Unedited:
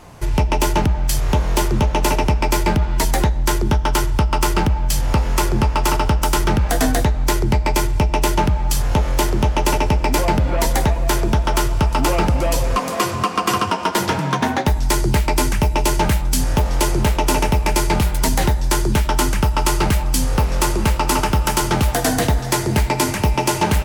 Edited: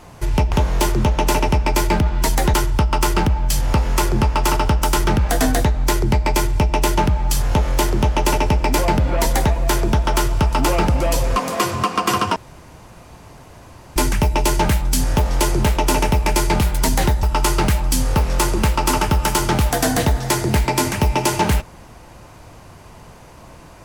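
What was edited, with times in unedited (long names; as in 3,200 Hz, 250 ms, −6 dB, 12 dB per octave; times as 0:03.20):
0:00.52–0:01.28: remove
0:03.30–0:03.94: remove
0:13.76–0:15.36: fill with room tone
0:18.63–0:19.45: remove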